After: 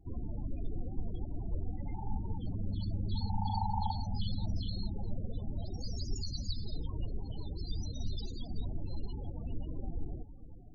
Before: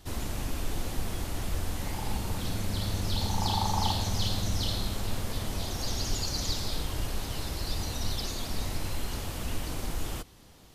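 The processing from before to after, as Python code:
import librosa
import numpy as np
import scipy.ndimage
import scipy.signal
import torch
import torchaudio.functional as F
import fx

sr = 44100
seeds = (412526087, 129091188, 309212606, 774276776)

y = fx.vibrato(x, sr, rate_hz=9.1, depth_cents=6.8)
y = fx.echo_diffused(y, sr, ms=475, feedback_pct=64, wet_db=-15.5)
y = fx.spec_topn(y, sr, count=16)
y = y * librosa.db_to_amplitude(-4.0)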